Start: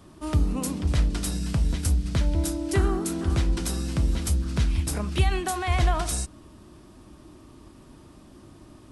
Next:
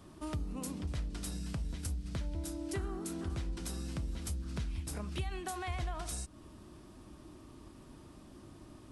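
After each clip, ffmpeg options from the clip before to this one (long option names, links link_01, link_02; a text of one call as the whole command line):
ffmpeg -i in.wav -af "acompressor=threshold=-35dB:ratio=2.5,volume=-4.5dB" out.wav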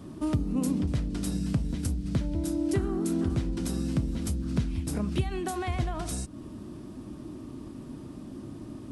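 ffmpeg -i in.wav -af "equalizer=frequency=125:width_type=o:width=1:gain=7,equalizer=frequency=250:width_type=o:width=1:gain=10,equalizer=frequency=500:width_type=o:width=1:gain=3,volume=4dB" out.wav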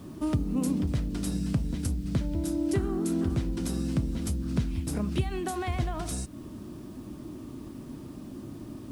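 ffmpeg -i in.wav -af "acrusher=bits=9:mix=0:aa=0.000001" out.wav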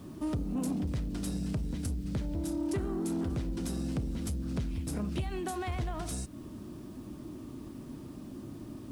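ffmpeg -i in.wav -af "asoftclip=type=tanh:threshold=-23.5dB,volume=-2.5dB" out.wav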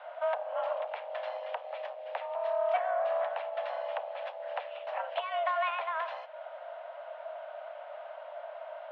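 ffmpeg -i in.wav -af "highpass=frequency=330:width_type=q:width=0.5412,highpass=frequency=330:width_type=q:width=1.307,lowpass=frequency=2800:width_type=q:width=0.5176,lowpass=frequency=2800:width_type=q:width=0.7071,lowpass=frequency=2800:width_type=q:width=1.932,afreqshift=330,volume=7.5dB" out.wav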